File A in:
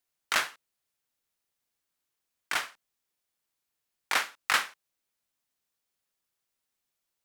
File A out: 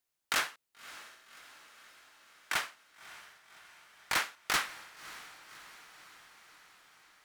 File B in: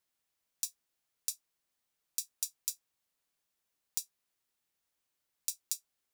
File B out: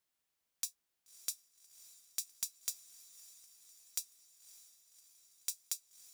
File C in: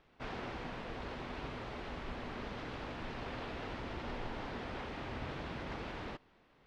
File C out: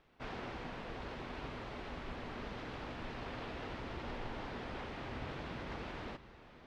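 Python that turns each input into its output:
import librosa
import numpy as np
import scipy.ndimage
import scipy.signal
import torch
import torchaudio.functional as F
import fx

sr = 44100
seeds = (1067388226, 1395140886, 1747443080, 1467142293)

y = 10.0 ** (-19.5 / 20.0) * (np.abs((x / 10.0 ** (-19.5 / 20.0) + 3.0) % 4.0 - 2.0) - 1.0)
y = fx.echo_diffused(y, sr, ms=582, feedback_pct=64, wet_db=-16.0)
y = y * 10.0 ** (-1.5 / 20.0)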